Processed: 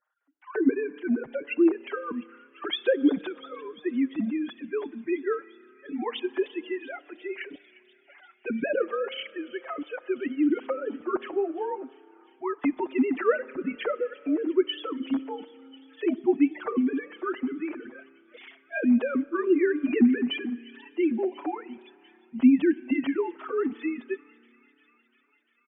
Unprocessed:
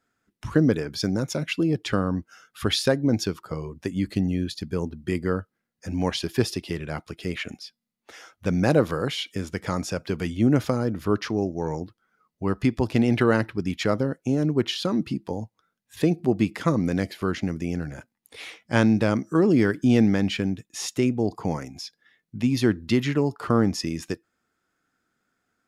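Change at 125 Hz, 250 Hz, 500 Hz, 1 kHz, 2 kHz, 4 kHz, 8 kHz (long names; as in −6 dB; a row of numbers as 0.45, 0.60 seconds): below −25 dB, −2.5 dB, −1.5 dB, −3.5 dB, −3.0 dB, −7.0 dB, below −40 dB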